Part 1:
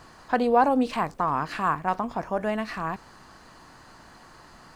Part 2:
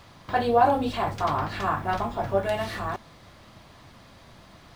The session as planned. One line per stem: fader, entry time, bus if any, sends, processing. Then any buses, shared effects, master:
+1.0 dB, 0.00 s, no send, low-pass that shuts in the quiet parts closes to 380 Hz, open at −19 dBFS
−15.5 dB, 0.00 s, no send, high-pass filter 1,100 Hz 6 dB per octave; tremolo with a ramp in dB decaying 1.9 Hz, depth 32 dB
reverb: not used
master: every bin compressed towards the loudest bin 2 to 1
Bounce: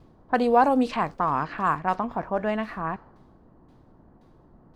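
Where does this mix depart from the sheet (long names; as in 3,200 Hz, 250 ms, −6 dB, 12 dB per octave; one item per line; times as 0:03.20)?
stem 2: polarity flipped
master: missing every bin compressed towards the loudest bin 2 to 1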